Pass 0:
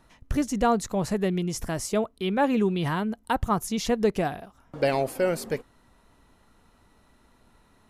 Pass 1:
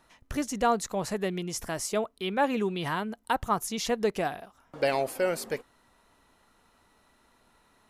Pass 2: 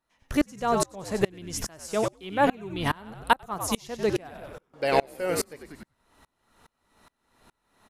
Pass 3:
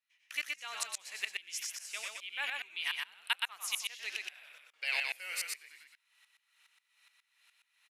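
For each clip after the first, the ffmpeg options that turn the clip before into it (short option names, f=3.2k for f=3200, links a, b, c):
-af "lowshelf=f=300:g=-10.5"
-filter_complex "[0:a]asplit=6[a][b][c][d][e][f];[b]adelay=95,afreqshift=-81,volume=-9dB[g];[c]adelay=190,afreqshift=-162,volume=-15.7dB[h];[d]adelay=285,afreqshift=-243,volume=-22.5dB[i];[e]adelay=380,afreqshift=-324,volume=-29.2dB[j];[f]adelay=475,afreqshift=-405,volume=-36dB[k];[a][g][h][i][j][k]amix=inputs=6:normalize=0,aeval=exprs='val(0)*pow(10,-30*if(lt(mod(-2.4*n/s,1),2*abs(-2.4)/1000),1-mod(-2.4*n/s,1)/(2*abs(-2.4)/1000),(mod(-2.4*n/s,1)-2*abs(-2.4)/1000)/(1-2*abs(-2.4)/1000))/20)':c=same,volume=9dB"
-af "highpass=f=2.4k:t=q:w=2.9,aecho=1:1:121:0.708,volume=-7dB"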